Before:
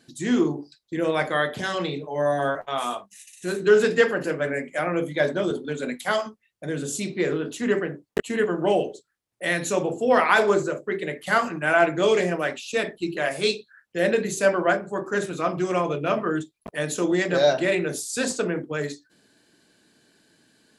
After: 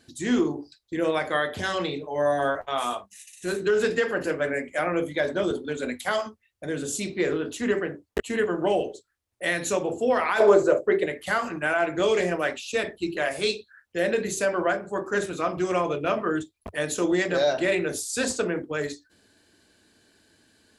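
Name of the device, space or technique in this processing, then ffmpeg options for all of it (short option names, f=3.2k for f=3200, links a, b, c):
car stereo with a boomy subwoofer: -filter_complex "[0:a]lowshelf=f=110:t=q:w=3:g=6.5,alimiter=limit=-13.5dB:level=0:latency=1:release=149,asettb=1/sr,asplit=3[a][b][c];[a]atrim=end=10.404[d];[b]atrim=start=10.4:end=11.06,asetpts=PTS-STARTPTS,afade=t=in:d=0.004:c=qsin,afade=t=out:st=0.656:d=0.004:c=qsin,equalizer=f=590:t=o:w=1.6:g=10.5[e];[c]atrim=start=11.056[f];[d][e]acrossfade=d=0.004:c1=hsin:c2=qsin[g];[g][f]acrossfade=d=0.004:c1=qsin:c2=hsin"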